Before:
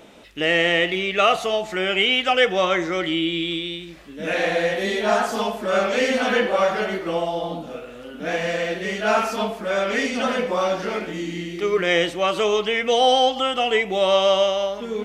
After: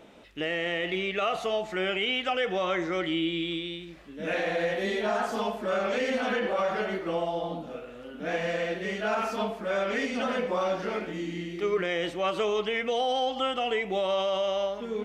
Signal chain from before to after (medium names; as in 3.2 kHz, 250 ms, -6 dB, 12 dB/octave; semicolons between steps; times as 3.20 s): treble shelf 4 kHz -7 dB; peak limiter -14 dBFS, peak gain reduction 8 dB; trim -5 dB